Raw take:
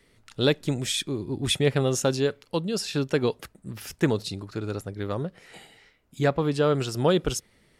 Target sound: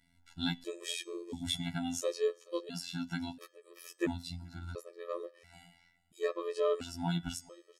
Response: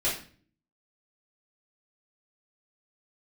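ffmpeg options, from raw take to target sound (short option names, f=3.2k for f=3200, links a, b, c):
-af "bandreject=f=245.4:t=h:w=4,bandreject=f=490.8:t=h:w=4,bandreject=f=736.2:t=h:w=4,bandreject=f=981.6:t=h:w=4,bandreject=f=1.227k:t=h:w=4,bandreject=f=1.4724k:t=h:w=4,bandreject=f=1.7178k:t=h:w=4,bandreject=f=1.9632k:t=h:w=4,bandreject=f=2.2086k:t=h:w=4,bandreject=f=2.454k:t=h:w=4,bandreject=f=2.6994k:t=h:w=4,bandreject=f=2.9448k:t=h:w=4,bandreject=f=3.1902k:t=h:w=4,bandreject=f=3.4356k:t=h:w=4,bandreject=f=3.681k:t=h:w=4,bandreject=f=3.9264k:t=h:w=4,bandreject=f=4.1718k:t=h:w=4,bandreject=f=4.4172k:t=h:w=4,bandreject=f=4.6626k:t=h:w=4,bandreject=f=4.908k:t=h:w=4,bandreject=f=5.1534k:t=h:w=4,bandreject=f=5.3988k:t=h:w=4,bandreject=f=5.6442k:t=h:w=4,bandreject=f=5.8896k:t=h:w=4,bandreject=f=6.135k:t=h:w=4,bandreject=f=6.3804k:t=h:w=4,bandreject=f=6.6258k:t=h:w=4,bandreject=f=6.8712k:t=h:w=4,bandreject=f=7.1166k:t=h:w=4,bandreject=f=7.362k:t=h:w=4,bandreject=f=7.6074k:t=h:w=4,bandreject=f=7.8528k:t=h:w=4,bandreject=f=8.0982k:t=h:w=4,bandreject=f=8.3436k:t=h:w=4,bandreject=f=8.589k:t=h:w=4,bandreject=f=8.8344k:t=h:w=4,bandreject=f=9.0798k:t=h:w=4,afftfilt=real='hypot(re,im)*cos(PI*b)':imag='0':win_size=2048:overlap=0.75,aecho=1:1:428:0.0668,afftfilt=real='re*gt(sin(2*PI*0.73*pts/sr)*(1-2*mod(floor(b*sr/1024/330),2)),0)':imag='im*gt(sin(2*PI*0.73*pts/sr)*(1-2*mod(floor(b*sr/1024/330),2)),0)':win_size=1024:overlap=0.75,volume=-4dB"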